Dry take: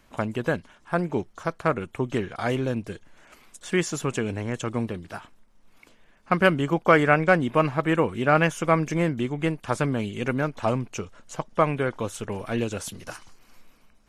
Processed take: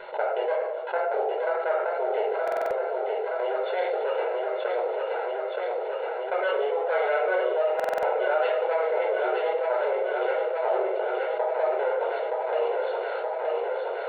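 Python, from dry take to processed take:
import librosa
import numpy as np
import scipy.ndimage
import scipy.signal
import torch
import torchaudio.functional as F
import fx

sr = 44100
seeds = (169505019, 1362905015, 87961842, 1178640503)

y = fx.lower_of_two(x, sr, delay_ms=1.4)
y = fx.tilt_eq(y, sr, slope=-3.0)
y = fx.level_steps(y, sr, step_db=20)
y = fx.brickwall_bandpass(y, sr, low_hz=370.0, high_hz=4400.0)
y = fx.high_shelf(y, sr, hz=2100.0, db=-11.0)
y = fx.notch(y, sr, hz=1200.0, q=5.5)
y = fx.echo_feedback(y, sr, ms=922, feedback_pct=58, wet_db=-8.0)
y = fx.room_shoebox(y, sr, seeds[0], volume_m3=650.0, walls='furnished', distance_m=4.9)
y = fx.buffer_glitch(y, sr, at_s=(2.43, 7.75), block=2048, repeats=5)
y = fx.env_flatten(y, sr, amount_pct=70)
y = y * librosa.db_to_amplitude(-7.5)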